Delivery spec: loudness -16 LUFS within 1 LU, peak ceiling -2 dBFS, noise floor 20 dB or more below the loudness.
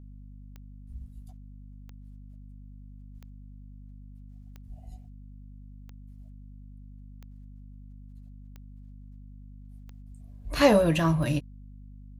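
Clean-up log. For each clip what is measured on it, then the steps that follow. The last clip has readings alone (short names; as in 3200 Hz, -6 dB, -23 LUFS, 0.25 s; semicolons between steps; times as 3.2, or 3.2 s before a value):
clicks 9; hum 50 Hz; harmonics up to 250 Hz; hum level -44 dBFS; loudness -24.0 LUFS; peak -8.5 dBFS; loudness target -16.0 LUFS
-> de-click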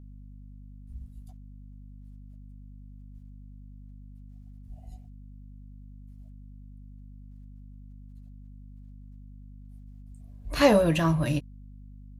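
clicks 0; hum 50 Hz; harmonics up to 250 Hz; hum level -44 dBFS
-> notches 50/100/150/200/250 Hz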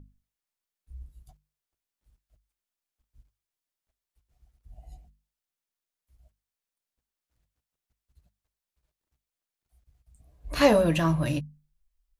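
hum none; loudness -24.0 LUFS; peak -8.5 dBFS; loudness target -16.0 LUFS
-> gain +8 dB; limiter -2 dBFS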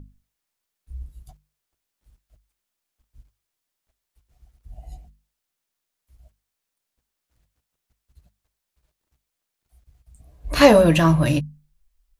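loudness -16.5 LUFS; peak -2.0 dBFS; noise floor -82 dBFS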